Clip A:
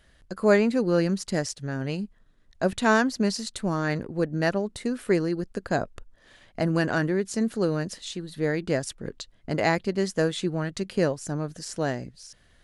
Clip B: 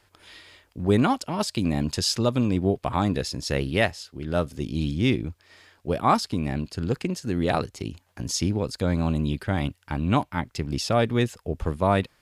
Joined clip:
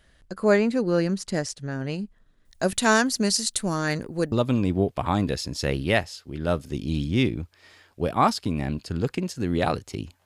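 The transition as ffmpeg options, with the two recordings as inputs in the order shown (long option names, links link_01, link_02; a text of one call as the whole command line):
ffmpeg -i cue0.wav -i cue1.wav -filter_complex "[0:a]asettb=1/sr,asplit=3[link_01][link_02][link_03];[link_01]atrim=end=2.454[link_04];[link_02]atrim=start=2.45:end=4.32,asetpts=PTS-STARTPTS,afade=type=in:duration=0.004:curve=qsin,afade=type=out:start_time=1.866:duration=0.004:curve=qsin,aemphasis=mode=production:type=75kf[link_05];[link_03]atrim=start=4.316[link_06];[link_04][link_05]acrossfade=duration=0.004:curve1=hsin:curve2=qsin[link_07];[link_07][link_06]acrossfade=duration=0.004:curve1=qsin:curve2=hsin,apad=whole_dur=10.25,atrim=end=10.25,atrim=end=4.322[link_08];[1:a]atrim=start=2.188:end=8.12[link_09];[link_08][link_09]acrossfade=duration=0.004:curve1=hsin:curve2=hsin" out.wav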